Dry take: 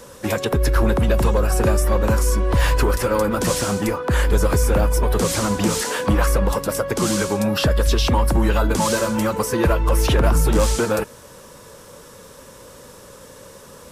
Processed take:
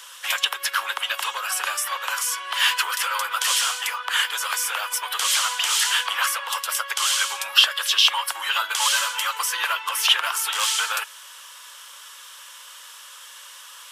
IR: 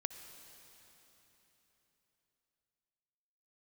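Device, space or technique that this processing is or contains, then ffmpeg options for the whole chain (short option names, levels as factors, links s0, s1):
headphones lying on a table: -af "highpass=f=1100:w=0.5412,highpass=f=1100:w=1.3066,equalizer=f=3100:t=o:w=0.4:g=11.5,volume=1.41"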